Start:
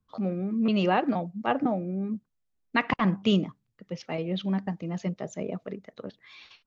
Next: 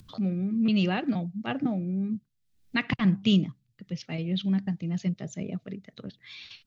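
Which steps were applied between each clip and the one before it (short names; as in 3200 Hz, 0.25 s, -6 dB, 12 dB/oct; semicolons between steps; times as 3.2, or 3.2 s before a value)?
graphic EQ 125/500/1000/4000 Hz +8/-7/-10/+4 dB; upward compressor, threshold -38 dBFS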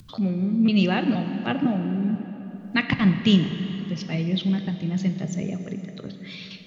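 plate-style reverb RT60 3.9 s, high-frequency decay 0.7×, DRR 7 dB; gain +4.5 dB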